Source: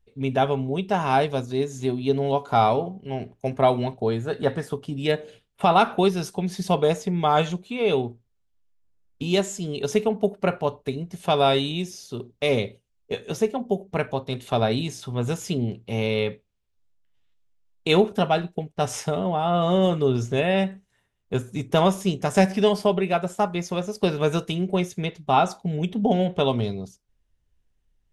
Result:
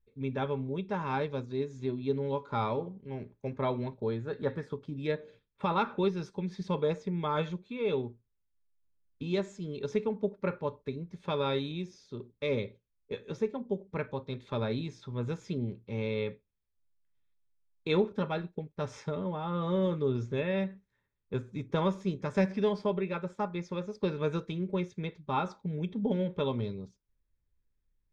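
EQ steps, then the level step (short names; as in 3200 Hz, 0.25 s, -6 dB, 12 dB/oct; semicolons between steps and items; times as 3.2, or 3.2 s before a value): Butterworth band-stop 710 Hz, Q 3.6; Butterworth band-stop 2900 Hz, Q 7.6; air absorption 170 m; -8.0 dB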